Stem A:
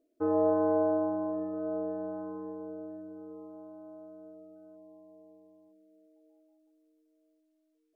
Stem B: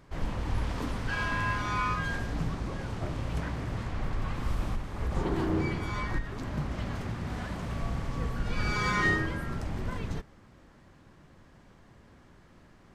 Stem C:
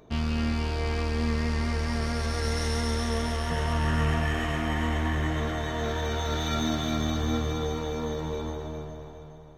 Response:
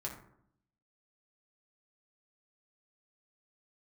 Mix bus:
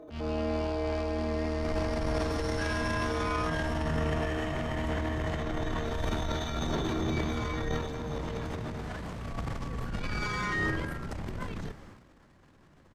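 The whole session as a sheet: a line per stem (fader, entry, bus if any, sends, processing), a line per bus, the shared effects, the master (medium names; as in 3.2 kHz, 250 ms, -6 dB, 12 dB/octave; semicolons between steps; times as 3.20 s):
-3.0 dB, 0.00 s, no send, spectral levelling over time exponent 0.4; compression 2:1, threshold -31 dBFS, peak gain reduction 5.5 dB
-4.0 dB, 1.50 s, no send, none
-7.5 dB, 0.00 s, no send, treble shelf 10 kHz -7 dB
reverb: none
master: transient shaper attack -8 dB, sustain +11 dB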